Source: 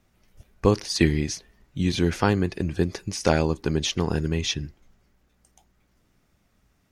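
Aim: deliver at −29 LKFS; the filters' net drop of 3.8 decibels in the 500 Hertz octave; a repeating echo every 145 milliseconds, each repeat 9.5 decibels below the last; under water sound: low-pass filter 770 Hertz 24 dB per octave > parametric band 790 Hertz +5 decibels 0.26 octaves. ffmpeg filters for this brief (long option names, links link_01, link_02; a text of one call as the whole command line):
ffmpeg -i in.wav -af "lowpass=frequency=770:width=0.5412,lowpass=frequency=770:width=1.3066,equalizer=frequency=500:width_type=o:gain=-5,equalizer=frequency=790:width_type=o:width=0.26:gain=5,aecho=1:1:145|290|435|580:0.335|0.111|0.0365|0.012,volume=-2.5dB" out.wav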